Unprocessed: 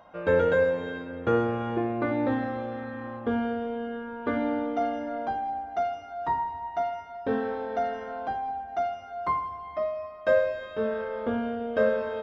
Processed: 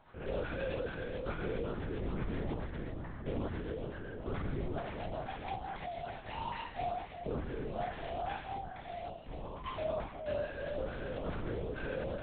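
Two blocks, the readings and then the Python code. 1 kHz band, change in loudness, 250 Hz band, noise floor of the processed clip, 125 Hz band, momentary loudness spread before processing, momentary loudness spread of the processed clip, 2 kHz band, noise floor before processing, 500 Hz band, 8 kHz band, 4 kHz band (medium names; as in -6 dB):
-11.5 dB, -11.0 dB, -11.5 dB, -47 dBFS, -1.5 dB, 9 LU, 5 LU, -10.5 dB, -43 dBFS, -12.0 dB, no reading, -2.5 dB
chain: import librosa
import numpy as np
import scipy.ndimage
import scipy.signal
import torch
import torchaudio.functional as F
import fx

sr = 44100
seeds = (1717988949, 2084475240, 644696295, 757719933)

p1 = fx.spec_trails(x, sr, decay_s=2.94)
p2 = fx.notch(p1, sr, hz=580.0, q=12.0)
p3 = fx.spec_box(p2, sr, start_s=9.09, length_s=0.56, low_hz=710.0, high_hz=2300.0, gain_db=-17)
p4 = (np.mod(10.0 ** (26.5 / 20.0) * p3 + 1.0, 2.0) - 1.0) / 10.0 ** (26.5 / 20.0)
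p5 = p3 + (p4 * librosa.db_to_amplitude(-11.5))
p6 = fx.rotary_switch(p5, sr, hz=7.5, then_hz=0.65, switch_at_s=5.11)
p7 = 10.0 ** (-27.0 / 20.0) * np.tanh(p6 / 10.0 ** (-27.0 / 20.0))
p8 = fx.filter_lfo_notch(p7, sr, shape='saw_up', hz=2.3, low_hz=420.0, high_hz=2300.0, q=1.1)
p9 = fx.doubler(p8, sr, ms=24.0, db=-11.5)
p10 = p9 + 10.0 ** (-19.5 / 20.0) * np.pad(p9, (int(481 * sr / 1000.0), 0))[:len(p9)]
p11 = fx.lpc_vocoder(p10, sr, seeds[0], excitation='whisper', order=8)
y = p11 * librosa.db_to_amplitude(-4.5)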